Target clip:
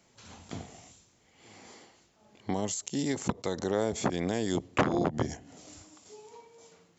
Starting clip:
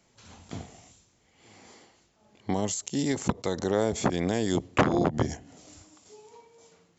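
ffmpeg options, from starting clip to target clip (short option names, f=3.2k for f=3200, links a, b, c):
-filter_complex "[0:a]lowshelf=f=69:g=-6,asplit=2[a][b];[b]acompressor=threshold=-40dB:ratio=6,volume=-2dB[c];[a][c]amix=inputs=2:normalize=0,volume=-4dB"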